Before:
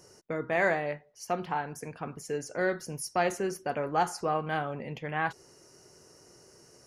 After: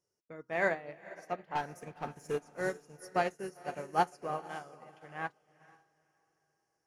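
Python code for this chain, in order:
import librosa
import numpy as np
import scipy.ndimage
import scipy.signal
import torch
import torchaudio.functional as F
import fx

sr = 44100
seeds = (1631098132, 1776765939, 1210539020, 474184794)

y = fx.leveller(x, sr, passes=2, at=(1.55, 2.38))
y = fx.low_shelf(y, sr, hz=200.0, db=-11.5, at=(4.38, 5.0))
y = fx.echo_diffused(y, sr, ms=473, feedback_pct=45, wet_db=-7.0)
y = fx.upward_expand(y, sr, threshold_db=-42.0, expansion=2.5)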